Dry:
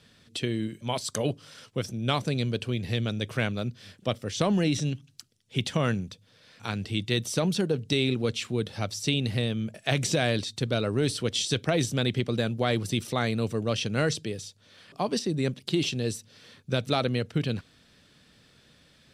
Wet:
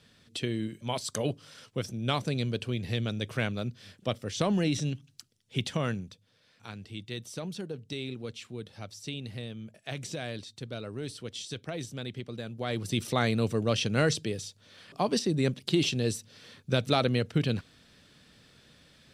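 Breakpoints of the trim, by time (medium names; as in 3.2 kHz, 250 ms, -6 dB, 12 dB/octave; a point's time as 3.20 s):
5.58 s -2.5 dB
6.77 s -11.5 dB
12.45 s -11.5 dB
13.06 s +0.5 dB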